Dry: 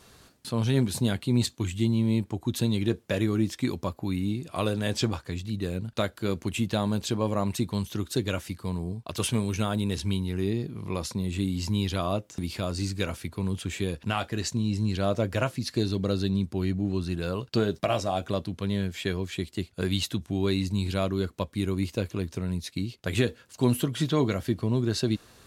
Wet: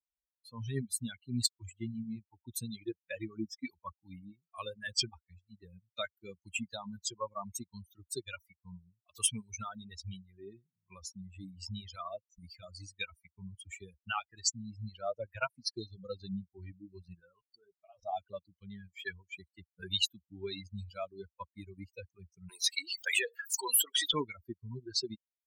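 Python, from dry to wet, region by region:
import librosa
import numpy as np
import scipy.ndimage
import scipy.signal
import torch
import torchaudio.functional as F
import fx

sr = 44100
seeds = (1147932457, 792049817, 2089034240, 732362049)

y = fx.chain(x, sr, fx.high_shelf(hz=4200.0, db=-9.0),
    fx.level_steps(step_db=17), at=(17.2, 18.03))
y = fx.chain(y, sr, fx.highpass(hz=390.0, slope=24),
    fx.env_flatten(amount_pct=70), at=(22.49, 24.14))
y = fx.bin_expand(y, sr, power=3.0)
y = fx.dereverb_blind(y, sr, rt60_s=1.4)
y = fx.tilt_shelf(y, sr, db=-8.0, hz=940.0)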